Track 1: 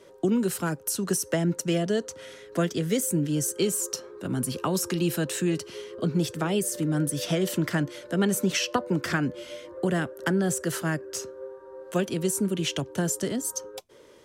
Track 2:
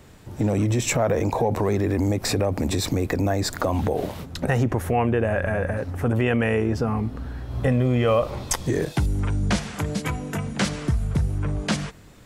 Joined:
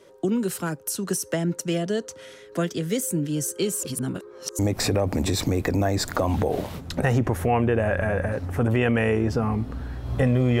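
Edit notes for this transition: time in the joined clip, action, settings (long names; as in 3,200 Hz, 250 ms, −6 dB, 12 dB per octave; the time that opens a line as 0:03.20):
track 1
0:03.83–0:04.59: reverse
0:04.59: continue with track 2 from 0:02.04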